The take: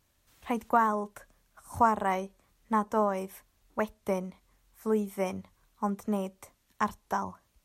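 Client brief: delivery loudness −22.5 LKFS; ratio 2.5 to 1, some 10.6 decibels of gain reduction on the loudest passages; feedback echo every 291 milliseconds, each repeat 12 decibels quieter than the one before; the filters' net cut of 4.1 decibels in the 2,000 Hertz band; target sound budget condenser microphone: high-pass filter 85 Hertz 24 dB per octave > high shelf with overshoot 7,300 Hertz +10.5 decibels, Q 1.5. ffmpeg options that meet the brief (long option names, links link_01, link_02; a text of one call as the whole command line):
ffmpeg -i in.wav -af "equalizer=frequency=2000:width_type=o:gain=-5,acompressor=threshold=-35dB:ratio=2.5,highpass=frequency=85:width=0.5412,highpass=frequency=85:width=1.3066,highshelf=frequency=7300:width_type=q:width=1.5:gain=10.5,aecho=1:1:291|582|873:0.251|0.0628|0.0157,volume=16.5dB" out.wav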